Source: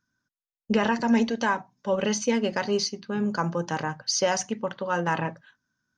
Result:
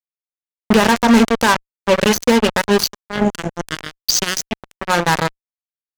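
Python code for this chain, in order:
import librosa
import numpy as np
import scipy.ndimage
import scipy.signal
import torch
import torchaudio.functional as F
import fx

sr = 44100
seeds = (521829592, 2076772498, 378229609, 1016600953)

y = fx.spec_box(x, sr, start_s=3.05, length_s=1.76, low_hz=420.0, high_hz=1400.0, gain_db=-29)
y = fx.cheby_harmonics(y, sr, harmonics=(3,), levels_db=(-11,), full_scale_db=-10.5)
y = fx.fuzz(y, sr, gain_db=35.0, gate_db=-40.0)
y = y * librosa.db_to_amplitude(7.0)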